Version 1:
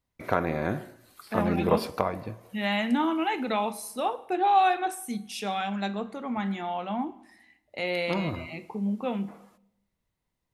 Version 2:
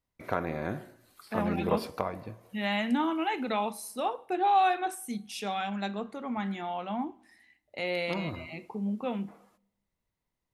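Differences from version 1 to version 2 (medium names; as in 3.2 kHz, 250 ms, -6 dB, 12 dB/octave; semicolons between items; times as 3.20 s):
first voice -5.0 dB; second voice: send -9.5 dB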